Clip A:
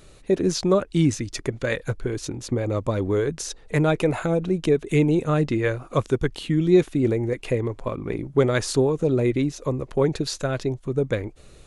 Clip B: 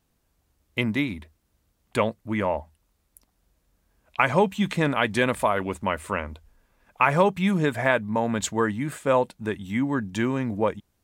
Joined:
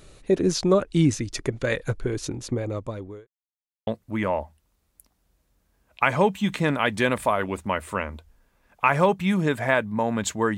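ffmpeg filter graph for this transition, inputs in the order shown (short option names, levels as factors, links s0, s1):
-filter_complex "[0:a]apad=whole_dur=10.57,atrim=end=10.57,asplit=2[s0][s1];[s0]atrim=end=3.27,asetpts=PTS-STARTPTS,afade=t=out:st=2.32:d=0.95[s2];[s1]atrim=start=3.27:end=3.87,asetpts=PTS-STARTPTS,volume=0[s3];[1:a]atrim=start=2.04:end=8.74,asetpts=PTS-STARTPTS,afade=t=in:d=0.004:c=hsin[s4];[s2][s3][s4]concat=n=3:v=0:a=1"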